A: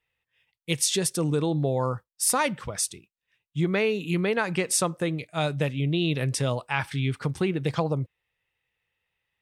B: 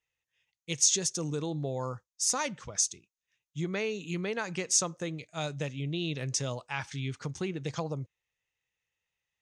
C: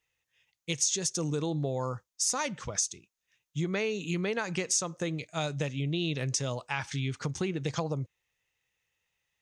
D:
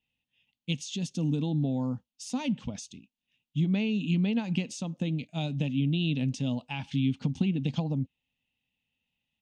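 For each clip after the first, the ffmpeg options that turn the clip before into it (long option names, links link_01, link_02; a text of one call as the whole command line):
ffmpeg -i in.wav -af "lowpass=frequency=6500:width_type=q:width=7,volume=-8.5dB" out.wav
ffmpeg -i in.wav -filter_complex "[0:a]asplit=2[link_01][link_02];[link_02]alimiter=limit=-19.5dB:level=0:latency=1:release=311,volume=-0.5dB[link_03];[link_01][link_03]amix=inputs=2:normalize=0,acompressor=threshold=-30dB:ratio=2" out.wav
ffmpeg -i in.wav -af "firequalizer=gain_entry='entry(110,0);entry(250,15);entry(360,-8);entry(830,-3);entry(1200,-16);entry(1900,-13);entry(2800,3);entry(5900,-15)':delay=0.05:min_phase=1" out.wav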